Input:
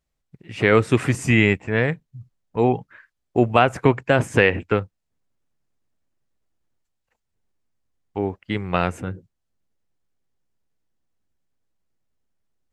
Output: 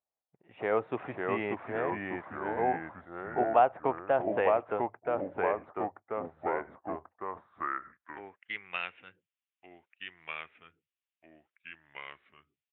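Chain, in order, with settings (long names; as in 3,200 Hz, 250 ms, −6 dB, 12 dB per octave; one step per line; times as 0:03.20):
delay with pitch and tempo change per echo 474 ms, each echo −2 semitones, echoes 3
downsampling to 8,000 Hz
band-pass filter sweep 750 Hz → 2,700 Hz, 0:07.06–0:08.85
level −3.5 dB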